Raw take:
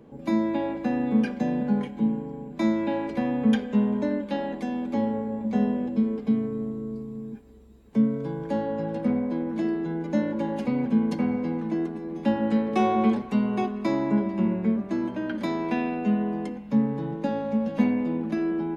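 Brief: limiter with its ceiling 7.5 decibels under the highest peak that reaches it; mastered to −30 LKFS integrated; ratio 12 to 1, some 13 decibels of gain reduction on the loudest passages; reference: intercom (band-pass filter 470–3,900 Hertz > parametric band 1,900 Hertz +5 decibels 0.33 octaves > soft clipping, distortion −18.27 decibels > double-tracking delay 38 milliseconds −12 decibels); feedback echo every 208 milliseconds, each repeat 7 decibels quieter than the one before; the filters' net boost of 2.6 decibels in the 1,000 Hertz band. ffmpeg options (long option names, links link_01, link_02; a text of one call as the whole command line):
ffmpeg -i in.wav -filter_complex "[0:a]equalizer=frequency=1000:width_type=o:gain=4,acompressor=threshold=-30dB:ratio=12,alimiter=level_in=2.5dB:limit=-24dB:level=0:latency=1,volume=-2.5dB,highpass=470,lowpass=3900,equalizer=frequency=1900:width_type=o:width=0.33:gain=5,aecho=1:1:208|416|624|832|1040:0.447|0.201|0.0905|0.0407|0.0183,asoftclip=threshold=-33dB,asplit=2[link_01][link_02];[link_02]adelay=38,volume=-12dB[link_03];[link_01][link_03]amix=inputs=2:normalize=0,volume=12dB" out.wav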